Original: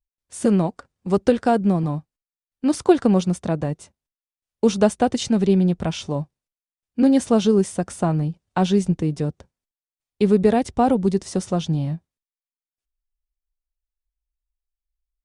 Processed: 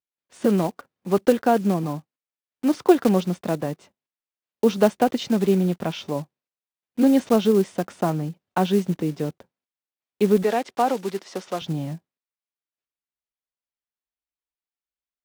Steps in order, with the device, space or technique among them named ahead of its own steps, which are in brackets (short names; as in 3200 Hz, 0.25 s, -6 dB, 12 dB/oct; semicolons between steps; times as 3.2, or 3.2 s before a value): early digital voice recorder (BPF 200–3700 Hz; block floating point 5-bit); 10.44–11.62 weighting filter A